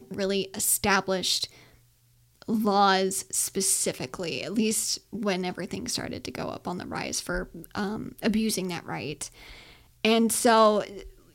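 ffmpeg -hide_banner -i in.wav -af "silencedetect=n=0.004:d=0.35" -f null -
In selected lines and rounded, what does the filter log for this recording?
silence_start: 1.75
silence_end: 2.36 | silence_duration: 0.61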